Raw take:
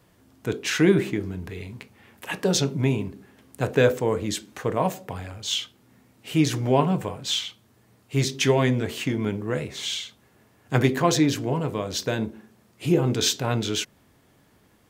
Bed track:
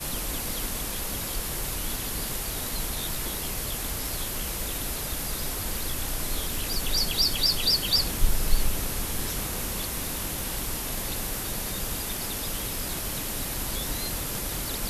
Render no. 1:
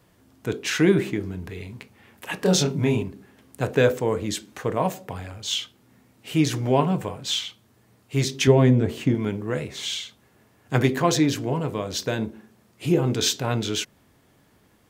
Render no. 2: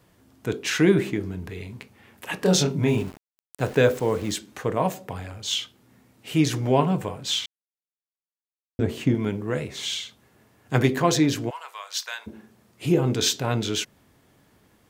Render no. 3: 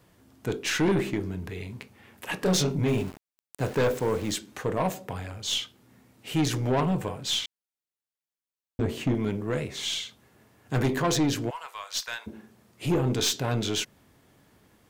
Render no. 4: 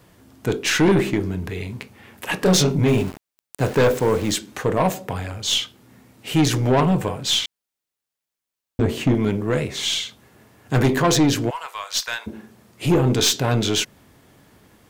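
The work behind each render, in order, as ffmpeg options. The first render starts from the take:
-filter_complex "[0:a]asettb=1/sr,asplit=3[s0][s1][s2];[s0]atrim=end=2.394[s3];[s1]atrim=start=2.39:end=3.03,asetpts=PTS-STARTPTS,afade=t=in:d=0.004:c=qsin,afade=t=out:st=0.636:d=0.004:c=qsin,asplit=2[s4][s5];[s5]adelay=27,volume=0.75[s6];[s4][s6]amix=inputs=2:normalize=0,atrim=end_sample=28224[s7];[s2]atrim=start=3.026[s8];[s3][s7]acrossfade=d=0.004:c1=hsin:c2=qsin[s9];[s9][s8]acrossfade=d=0.004:c1=qsin:c2=hsin,asettb=1/sr,asplit=3[s10][s11][s12];[s10]atrim=end=8.474[s13];[s11]atrim=start=8.47:end=9.15,asetpts=PTS-STARTPTS,afade=t=in:d=0.004:c=qsin,afade=t=out:st=0.676:d=0.004:c=qsin,tiltshelf=f=810:g=6.5[s14];[s12]atrim=start=9.146[s15];[s13][s14]acrossfade=d=0.004:c1=hsin:c2=qsin[s16];[s16][s15]acrossfade=d=0.004:c1=qsin:c2=hsin"
-filter_complex "[0:a]asettb=1/sr,asplit=3[s0][s1][s2];[s0]atrim=end=2.884[s3];[s1]atrim=start=2.88:end=4.37,asetpts=PTS-STARTPTS,afade=t=in:d=0.004:c=qsin,afade=t=out:st=1.486:d=0.004:c=qsin,aeval=exprs='val(0)*gte(abs(val(0)),0.0126)':c=same[s4];[s2]atrim=start=4.366[s5];[s3][s4]acrossfade=d=0.004:c1=hsin:c2=qsin[s6];[s6][s5]acrossfade=d=0.004:c1=qsin:c2=hsin,asplit=3[s7][s8][s9];[s7]afade=t=out:st=11.49:d=0.02[s10];[s8]highpass=f=970:w=0.5412,highpass=f=970:w=1.3066,afade=t=in:st=11.49:d=0.02,afade=t=out:st=12.26:d=0.02[s11];[s9]afade=t=in:st=12.26:d=0.02[s12];[s10][s11][s12]amix=inputs=3:normalize=0,asplit=3[s13][s14][s15];[s13]atrim=end=7.46,asetpts=PTS-STARTPTS,afade=t=out:st=7.456:d=0.004:c=hsin[s16];[s14]atrim=start=7.46:end=8.79,asetpts=PTS-STARTPTS,volume=0[s17];[s15]atrim=start=8.79,asetpts=PTS-STARTPTS,afade=t=in:d=0.004:c=hsin[s18];[s16][s17][s18]concat=n=3:v=0:a=1"
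-af "aeval=exprs='(tanh(8.91*val(0)+0.25)-tanh(0.25))/8.91':c=same"
-af "volume=2.37"

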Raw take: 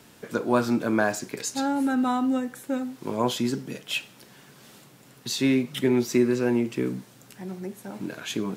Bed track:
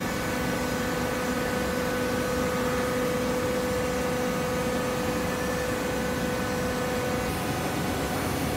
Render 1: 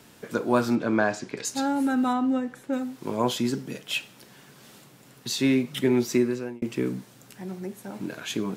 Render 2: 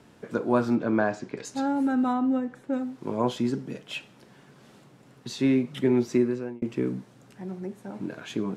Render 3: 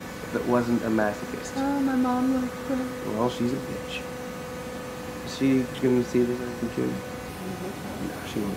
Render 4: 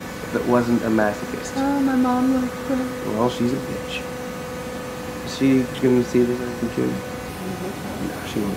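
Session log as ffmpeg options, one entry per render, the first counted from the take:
-filter_complex "[0:a]asettb=1/sr,asplit=3[s0][s1][s2];[s0]atrim=end=0.754[s3];[s1]atrim=start=0.75:end=1.45,asetpts=PTS-STARTPTS,afade=t=in:d=0.004:c=qsin,afade=t=out:st=0.696:d=0.004:c=qsin,lowpass=5100[s4];[s2]atrim=start=1.446[s5];[s3][s4]acrossfade=d=0.004:c1=hsin:c2=qsin[s6];[s6][s5]acrossfade=d=0.004:c1=qsin:c2=hsin,asettb=1/sr,asplit=3[s7][s8][s9];[s7]atrim=end=2.134[s10];[s8]atrim=start=2.13:end=2.73,asetpts=PTS-STARTPTS,afade=t=in:d=0.004:c=qsin,afade=t=out:st=0.596:d=0.004:c=qsin,aemphasis=mode=reproduction:type=50kf[s11];[s9]atrim=start=2.726[s12];[s10][s11]acrossfade=d=0.004:c1=hsin:c2=qsin[s13];[s13][s12]acrossfade=d=0.004:c1=qsin:c2=hsin,asplit=2[s14][s15];[s14]atrim=end=6.62,asetpts=PTS-STARTPTS,afade=t=out:st=6.13:d=0.49[s16];[s15]atrim=start=6.62,asetpts=PTS-STARTPTS,afade=t=in:d=0.004:c=hsin[s17];[s16][s17]concat=n=2:v=0:a=1"
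-af "lowpass=10000,highshelf=f=2100:g=-10.5"
-filter_complex "[1:a]volume=0.398[s0];[0:a][s0]amix=inputs=2:normalize=0"
-af "volume=1.78"

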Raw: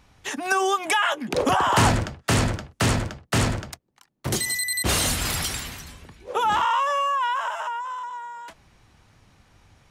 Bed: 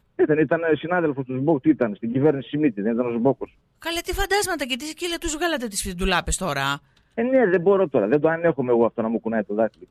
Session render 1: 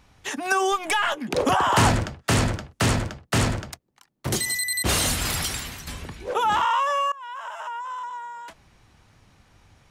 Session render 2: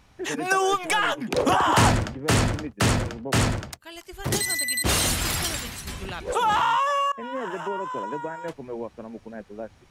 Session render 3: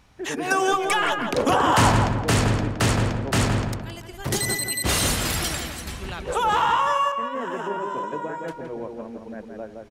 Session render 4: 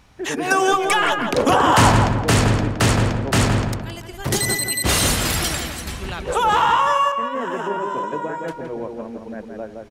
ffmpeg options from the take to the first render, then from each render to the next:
-filter_complex "[0:a]asettb=1/sr,asplit=3[s0][s1][s2];[s0]atrim=end=0.724[s3];[s1]atrim=start=0.72:end=1.16,asetpts=PTS-STARTPTS,afade=t=in:d=0.004:c=qsin,afade=t=out:st=0.436:d=0.004:c=qsin,aeval=exprs='if(lt(val(0),0),0.708*val(0),val(0))':c=same[s4];[s2]atrim=start=1.156[s5];[s3][s4]acrossfade=d=0.004:c1=hsin:c2=qsin[s6];[s6][s5]acrossfade=d=0.004:c1=qsin:c2=hsin,asettb=1/sr,asplit=3[s7][s8][s9];[s7]atrim=end=5.874[s10];[s8]atrim=start=5.87:end=6.34,asetpts=PTS-STARTPTS,afade=t=in:d=0.004:c=qsin,afade=t=out:st=0.466:d=0.004:c=qsin,aeval=exprs='0.0668*sin(PI/2*1.78*val(0)/0.0668)':c=same[s11];[s9]atrim=start=6.336[s12];[s10][s11]acrossfade=d=0.004:c1=hsin:c2=qsin[s13];[s13][s12]acrossfade=d=0.004:c1=qsin:c2=hsin,asplit=2[s14][s15];[s14]atrim=end=7.12,asetpts=PTS-STARTPTS,afade=t=out:st=7.116:d=0.004:c=hsin:silence=0.0749894[s16];[s15]atrim=start=7.12,asetpts=PTS-STARTPTS,afade=t=in:d=0.89:silence=0.0749894[s17];[s16][s17]concat=n=2:v=0:a=1"
-filter_complex "[1:a]volume=0.178[s0];[0:a][s0]amix=inputs=2:normalize=0"
-filter_complex "[0:a]asplit=2[s0][s1];[s1]adelay=167,lowpass=f=2000:p=1,volume=0.631,asplit=2[s2][s3];[s3]adelay=167,lowpass=f=2000:p=1,volume=0.42,asplit=2[s4][s5];[s5]adelay=167,lowpass=f=2000:p=1,volume=0.42,asplit=2[s6][s7];[s7]adelay=167,lowpass=f=2000:p=1,volume=0.42,asplit=2[s8][s9];[s9]adelay=167,lowpass=f=2000:p=1,volume=0.42[s10];[s0][s2][s4][s6][s8][s10]amix=inputs=6:normalize=0"
-af "volume=1.58"

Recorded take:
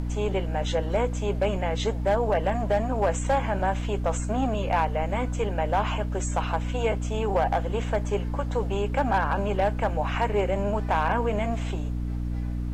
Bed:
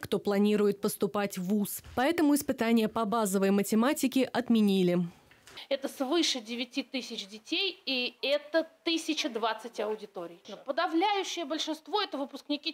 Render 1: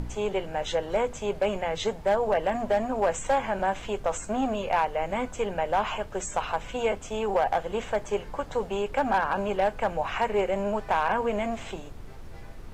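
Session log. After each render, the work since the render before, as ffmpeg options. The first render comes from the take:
-af "bandreject=f=60:t=h:w=4,bandreject=f=120:t=h:w=4,bandreject=f=180:t=h:w=4,bandreject=f=240:t=h:w=4,bandreject=f=300:t=h:w=4"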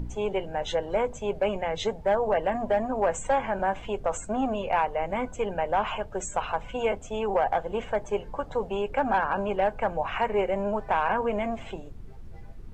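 -af "afftdn=nr=11:nf=-41"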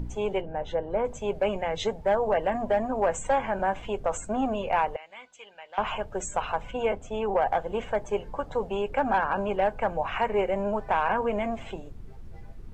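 -filter_complex "[0:a]asplit=3[s0][s1][s2];[s0]afade=t=out:st=0.4:d=0.02[s3];[s1]lowpass=f=1000:p=1,afade=t=in:st=0.4:d=0.02,afade=t=out:st=1.04:d=0.02[s4];[s2]afade=t=in:st=1.04:d=0.02[s5];[s3][s4][s5]amix=inputs=3:normalize=0,asettb=1/sr,asplit=3[s6][s7][s8];[s6]atrim=end=4.964[s9];[s7]atrim=start=4.96:end=5.78,asetpts=PTS-STARTPTS,afade=t=in:d=0.004:c=qsin,afade=t=out:st=0.816:d=0.004:c=qsin,bandpass=f=3800:t=q:w=1.8[s10];[s8]atrim=start=5.776[s11];[s9][s10]acrossfade=d=0.004:c1=hsin:c2=qsin[s12];[s12][s11]acrossfade=d=0.004:c1=qsin:c2=hsin,asettb=1/sr,asplit=3[s13][s14][s15];[s13]atrim=end=6.714[s16];[s14]atrim=start=6.71:end=7.42,asetpts=PTS-STARTPTS,afade=t=in:d=0.004:c=qsin,afade=t=out:st=0.706:d=0.004:c=qsin,highshelf=f=4300:g=-7[s17];[s15]atrim=start=7.416[s18];[s16][s17]acrossfade=d=0.004:c1=hsin:c2=qsin[s19];[s19][s18]acrossfade=d=0.004:c1=qsin:c2=hsin"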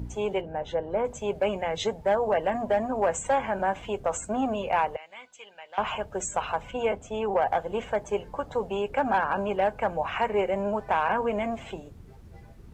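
-af "highpass=49,highshelf=f=6100:g=5"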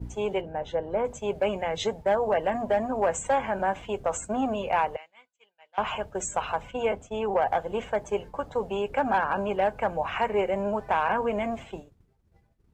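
-af "agate=range=0.0224:threshold=0.0178:ratio=3:detection=peak"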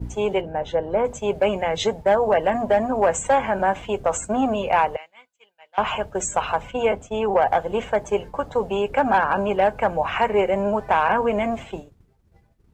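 -af "volume=2"

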